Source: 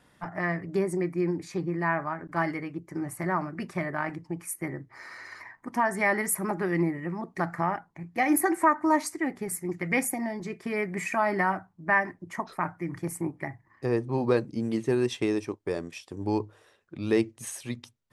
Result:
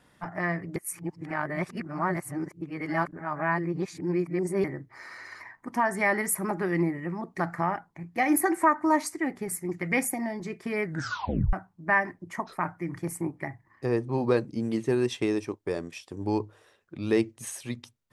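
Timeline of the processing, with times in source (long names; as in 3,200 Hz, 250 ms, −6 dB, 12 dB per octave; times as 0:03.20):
0:00.76–0:04.64: reverse
0:10.84: tape stop 0.69 s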